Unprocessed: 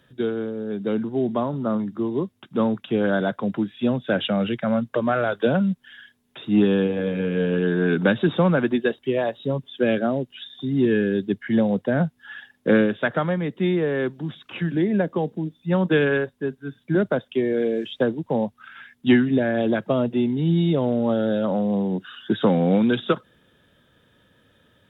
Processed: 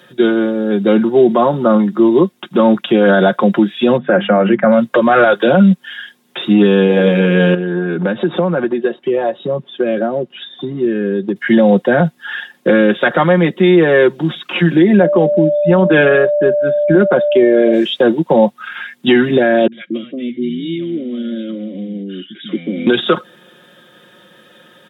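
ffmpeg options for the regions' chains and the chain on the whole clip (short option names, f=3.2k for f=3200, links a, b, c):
-filter_complex "[0:a]asettb=1/sr,asplit=3[a][b][c];[a]atrim=end=3.974[d];[b]atrim=start=3.97:end=4.72,asetpts=PTS-STARTPTS,afade=t=in:d=0.004:c=qsin,afade=t=out:st=0.746:d=0.004:c=qsin,lowpass=f=2k:w=0.5412,lowpass=f=2k:w=1.3066,bandreject=f=50:t=h:w=6,bandreject=f=100:t=h:w=6,bandreject=f=150:t=h:w=6,bandreject=f=200:t=h:w=6,bandreject=f=250:t=h:w=6[e];[c]atrim=start=4.716[f];[d][e]acrossfade=d=0.004:c1=hsin:c2=qsin[g];[g][f]acrossfade=d=0.004:c1=qsin:c2=hsin,asettb=1/sr,asplit=3[h][i][j];[h]atrim=end=7.544[k];[i]atrim=start=7.54:end=11.36,asetpts=PTS-STARTPTS,afade=t=in:d=0.004:c=qsin,afade=t=out:st=3.816:d=0.004:c=qsin,lowpass=f=1.2k:p=1,acompressor=threshold=-27dB:ratio=6:attack=3.2:release=140:knee=1:detection=peak[l];[j]atrim=start=11.356[m];[k][l]acrossfade=d=0.004:c1=hsin:c2=qsin[n];[n][m]acrossfade=d=0.004:c1=qsin:c2=hsin,asettb=1/sr,asplit=3[o][p][q];[o]atrim=end=15.014[r];[p]atrim=start=15.01:end=17.73,asetpts=PTS-STARTPTS,afade=t=in:d=0.004:c=qsin,afade=t=out:st=2.716:d=0.004:c=qsin,lowpass=2.7k,aeval=exprs='val(0)+0.0501*sin(2*PI*590*n/s)':c=same,bandreject=f=1.9k:w=17[s];[q]atrim=start=17.726[t];[r][s]acrossfade=d=0.004:c1=hsin:c2=qsin[u];[u][t]acrossfade=d=0.004:c1=qsin:c2=hsin,asettb=1/sr,asplit=3[v][w][x];[v]atrim=end=19.674[y];[w]atrim=start=19.67:end=22.87,asetpts=PTS-STARTPTS,afade=t=in:d=0.004:c=qsin,afade=t=out:st=3.196:d=0.004:c=qsin,asplit=3[z][aa][ab];[z]bandpass=f=270:t=q:w=8,volume=0dB[ac];[aa]bandpass=f=2.29k:t=q:w=8,volume=-6dB[ad];[ab]bandpass=f=3.01k:t=q:w=8,volume=-9dB[ae];[ac][ad][ae]amix=inputs=3:normalize=0,acrossover=split=160|720[af][ag][ah];[ah]adelay=50[ai];[ag]adelay=230[aj];[af][aj][ai]amix=inputs=3:normalize=0,atrim=end_sample=141120[ak];[x]atrim=start=22.866[al];[y][ak]acrossfade=d=0.004:c1=hsin:c2=qsin[am];[am][al]acrossfade=d=0.004:c1=qsin:c2=hsin,highpass=240,aecho=1:1:5.6:0.67,alimiter=level_in=15.5dB:limit=-1dB:release=50:level=0:latency=1,volume=-1dB"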